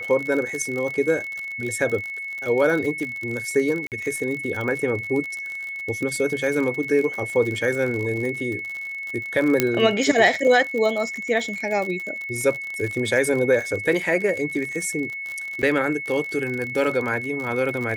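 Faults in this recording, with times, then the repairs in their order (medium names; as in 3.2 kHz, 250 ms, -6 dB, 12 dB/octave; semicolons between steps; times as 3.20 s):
crackle 53 per s -27 dBFS
whine 2.2 kHz -29 dBFS
3.87–3.92 s: dropout 48 ms
9.60 s: pop -2 dBFS
15.62–15.63 s: dropout 7.9 ms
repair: de-click; band-stop 2.2 kHz, Q 30; interpolate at 3.87 s, 48 ms; interpolate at 15.62 s, 7.9 ms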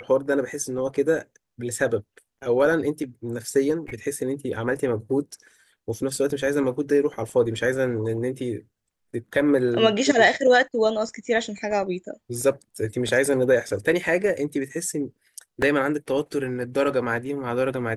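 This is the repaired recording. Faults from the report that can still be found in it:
nothing left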